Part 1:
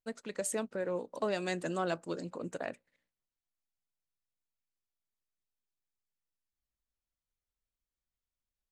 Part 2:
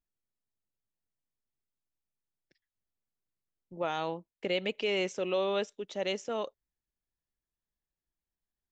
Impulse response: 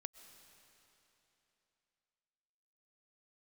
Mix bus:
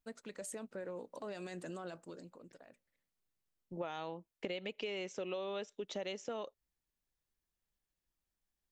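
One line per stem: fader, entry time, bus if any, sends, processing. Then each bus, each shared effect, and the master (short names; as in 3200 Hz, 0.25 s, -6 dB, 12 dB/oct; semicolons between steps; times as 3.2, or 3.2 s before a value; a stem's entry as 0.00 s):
-5.0 dB, 0.00 s, no send, limiter -30 dBFS, peak gain reduction 11 dB; auto duck -13 dB, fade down 0.55 s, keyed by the second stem
+1.5 dB, 0.00 s, no send, dry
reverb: off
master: compressor 12:1, threshold -37 dBFS, peak gain reduction 13.5 dB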